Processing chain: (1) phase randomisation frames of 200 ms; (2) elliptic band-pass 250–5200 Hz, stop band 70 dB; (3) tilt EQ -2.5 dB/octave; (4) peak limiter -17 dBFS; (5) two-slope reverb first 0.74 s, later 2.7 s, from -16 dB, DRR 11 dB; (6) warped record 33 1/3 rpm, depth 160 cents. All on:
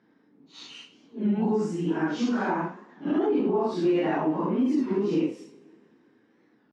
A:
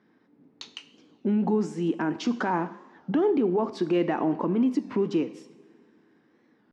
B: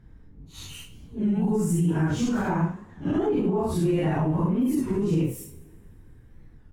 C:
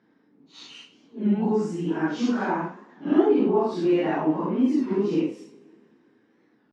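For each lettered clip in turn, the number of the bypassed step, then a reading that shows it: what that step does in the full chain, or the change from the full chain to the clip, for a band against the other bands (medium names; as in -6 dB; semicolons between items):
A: 1, momentary loudness spread change -1 LU; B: 2, 125 Hz band +11.5 dB; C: 4, crest factor change +6.0 dB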